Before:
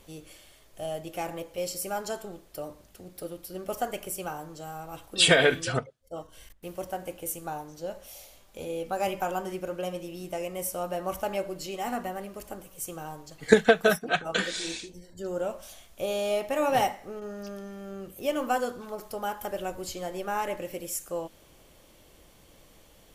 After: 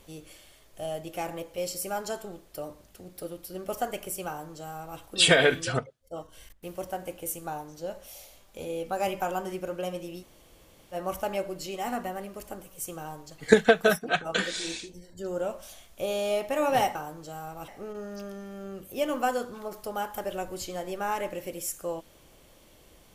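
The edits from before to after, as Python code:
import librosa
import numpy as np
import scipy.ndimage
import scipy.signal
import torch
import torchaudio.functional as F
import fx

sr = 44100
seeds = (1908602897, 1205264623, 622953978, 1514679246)

y = fx.edit(x, sr, fx.duplicate(start_s=4.27, length_s=0.73, to_s=16.95),
    fx.room_tone_fill(start_s=10.21, length_s=0.73, crossfade_s=0.06), tone=tone)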